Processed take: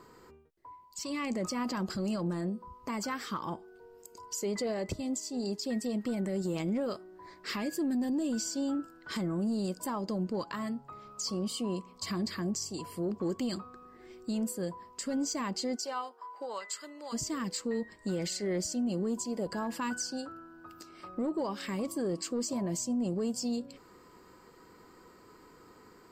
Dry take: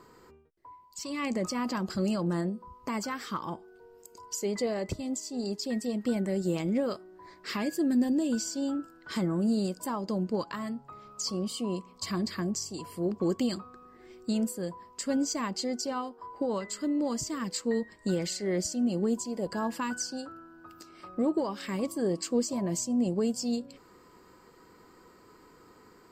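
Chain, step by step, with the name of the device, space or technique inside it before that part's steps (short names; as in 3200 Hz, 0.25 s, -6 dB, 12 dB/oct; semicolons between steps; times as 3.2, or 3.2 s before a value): 15.75–17.12 HPF 550 Hz -> 1100 Hz 12 dB/oct; soft clipper into limiter (soft clip -19 dBFS, distortion -24 dB; limiter -26 dBFS, peak gain reduction 5.5 dB)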